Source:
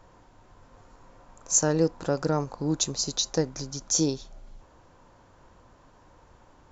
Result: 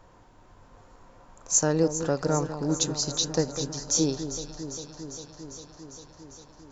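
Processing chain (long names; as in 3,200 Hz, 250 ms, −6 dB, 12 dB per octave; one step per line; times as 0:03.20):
delay that swaps between a low-pass and a high-pass 200 ms, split 1,100 Hz, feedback 85%, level −10 dB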